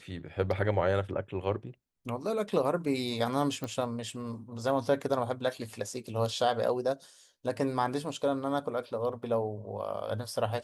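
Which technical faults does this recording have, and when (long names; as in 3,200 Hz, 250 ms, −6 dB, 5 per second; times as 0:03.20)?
0:03.64: click −22 dBFS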